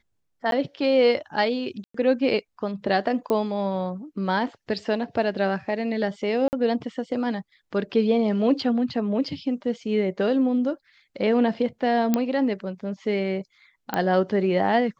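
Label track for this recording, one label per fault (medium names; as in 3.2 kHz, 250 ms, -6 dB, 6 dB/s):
0.510000	0.520000	dropout 12 ms
1.840000	1.940000	dropout 104 ms
3.300000	3.300000	pop -14 dBFS
6.480000	6.530000	dropout 49 ms
12.140000	12.140000	pop -8 dBFS
13.940000	13.940000	pop -11 dBFS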